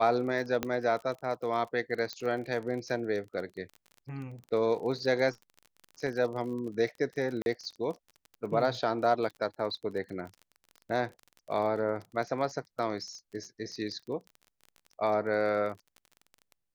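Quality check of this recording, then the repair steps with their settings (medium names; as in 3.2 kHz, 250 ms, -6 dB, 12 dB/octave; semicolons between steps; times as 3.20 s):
crackle 31 per s -39 dBFS
0.63 s: pop -15 dBFS
2.13 s: pop -22 dBFS
7.42–7.46 s: dropout 41 ms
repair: de-click; interpolate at 7.42 s, 41 ms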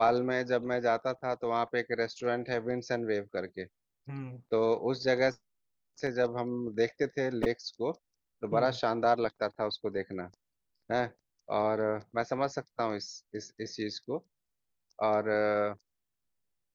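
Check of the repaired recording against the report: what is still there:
nothing left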